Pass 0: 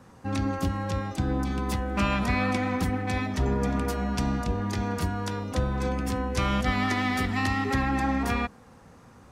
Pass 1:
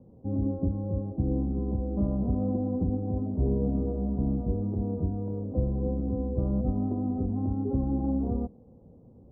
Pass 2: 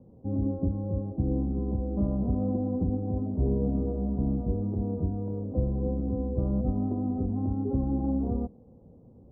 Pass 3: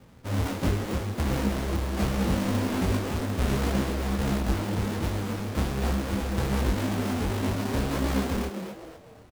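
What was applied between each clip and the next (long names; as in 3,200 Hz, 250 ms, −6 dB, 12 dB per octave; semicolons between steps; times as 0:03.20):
inverse Chebyshev low-pass filter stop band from 1,900 Hz, stop band 60 dB
no processing that can be heard
each half-wave held at its own peak; echo with shifted repeats 248 ms, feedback 36%, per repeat +130 Hz, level −8.5 dB; micro pitch shift up and down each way 47 cents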